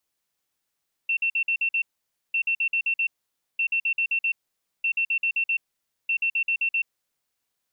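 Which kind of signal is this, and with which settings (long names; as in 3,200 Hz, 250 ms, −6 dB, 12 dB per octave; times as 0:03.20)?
beeps in groups sine 2,700 Hz, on 0.08 s, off 0.05 s, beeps 6, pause 0.52 s, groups 5, −20.5 dBFS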